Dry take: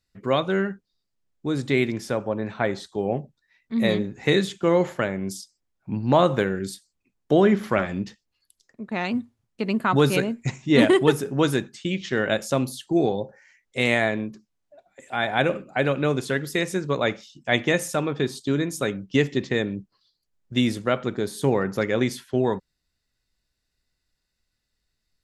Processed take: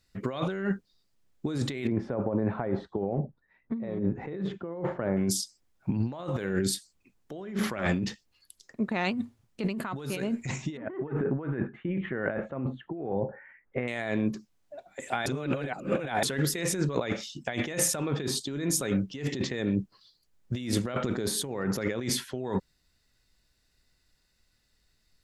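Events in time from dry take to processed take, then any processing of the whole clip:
1.87–5.17 LPF 1100 Hz
10.77–13.88 inverse Chebyshev low-pass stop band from 4700 Hz, stop band 50 dB
15.26–16.23 reverse
whole clip: negative-ratio compressor -31 dBFS, ratio -1

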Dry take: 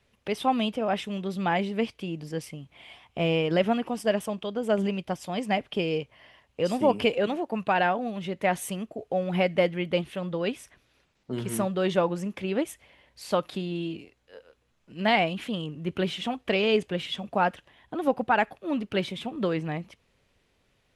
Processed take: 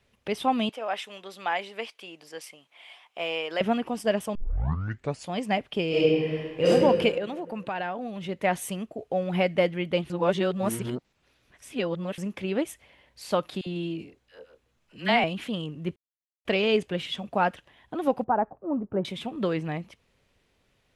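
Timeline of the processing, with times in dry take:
0.69–3.61 HPF 660 Hz
4.35 tape start 0.95 s
5.88–6.68 reverb throw, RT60 1.8 s, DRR -9 dB
7.18–8.29 compressor 2:1, threshold -33 dBFS
10.1–12.18 reverse
13.61–15.24 dispersion lows, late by 55 ms, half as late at 820 Hz
15.96–16.45 mute
18.24–19.05 LPF 1100 Hz 24 dB/oct

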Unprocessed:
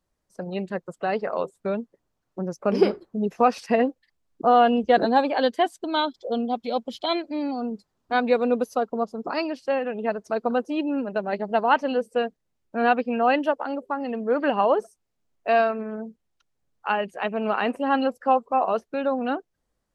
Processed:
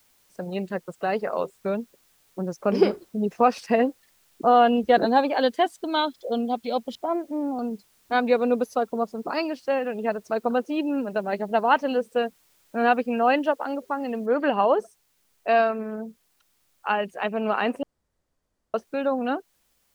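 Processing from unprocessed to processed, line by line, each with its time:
6.95–7.59 LPF 1300 Hz 24 dB/oct
14.26 noise floor step -63 dB -69 dB
17.83–18.74 room tone

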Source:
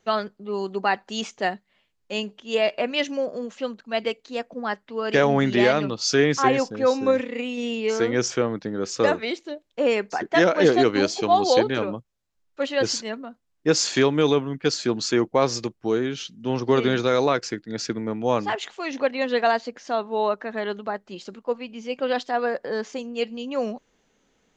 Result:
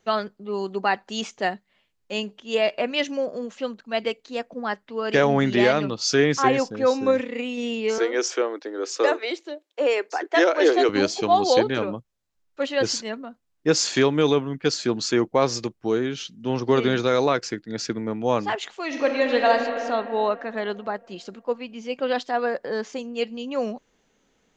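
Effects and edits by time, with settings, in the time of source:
7.98–10.89 steep high-pass 300 Hz 48 dB/oct
18.85–19.49 reverb throw, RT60 2.9 s, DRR 1 dB

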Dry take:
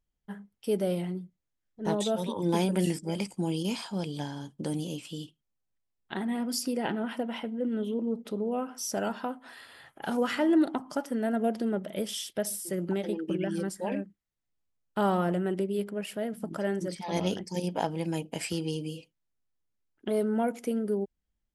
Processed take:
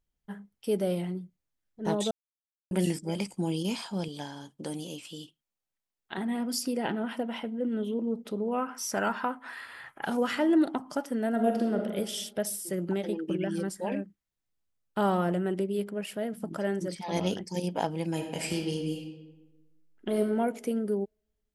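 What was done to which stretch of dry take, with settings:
2.11–2.71 mute
4.08–6.18 low shelf 240 Hz -10.5 dB
8.48–10.05 band shelf 1500 Hz +8 dB
11.29–11.82 reverb throw, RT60 1.2 s, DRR 2 dB
18.11–20.21 reverb throw, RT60 1.2 s, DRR 3.5 dB

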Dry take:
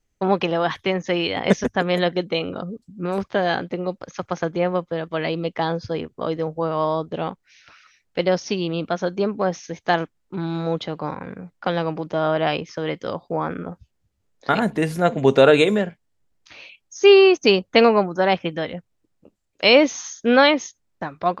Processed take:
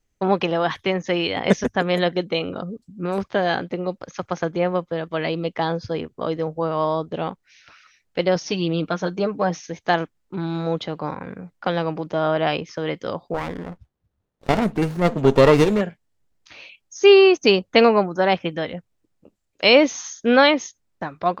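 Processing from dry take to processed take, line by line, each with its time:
8.35–9.61 comb 6.5 ms, depth 54%
13.34–15.81 running maximum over 17 samples

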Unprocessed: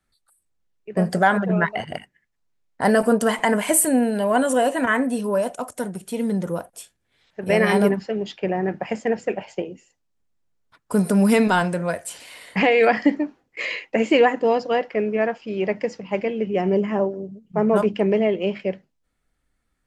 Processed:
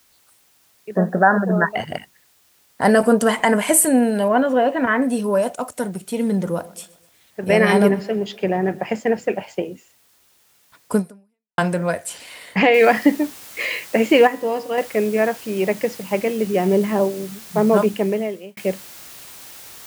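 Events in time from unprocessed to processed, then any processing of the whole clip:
0.91–1.71 brick-wall FIR band-pass 160–1900 Hz
4.28–5.02 air absorption 280 m
6.02–8.89 feedback echo 0.125 s, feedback 50%, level -21 dB
10.96–11.58 fade out exponential
12.74 noise floor step -61 dB -43 dB
14.27–14.78 resonator 67 Hz, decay 0.78 s
17.79–18.57 fade out
whole clip: HPF 44 Hz; gain +3 dB

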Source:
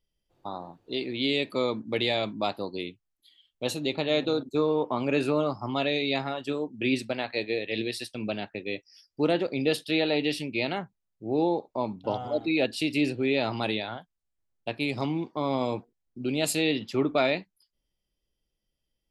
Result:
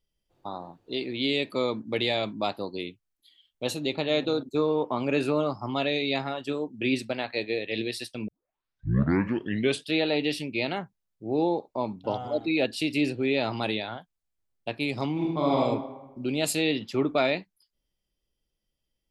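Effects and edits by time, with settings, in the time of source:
8.28 tape start 1.62 s
15.12–15.58 reverb throw, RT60 1.1 s, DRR -2.5 dB

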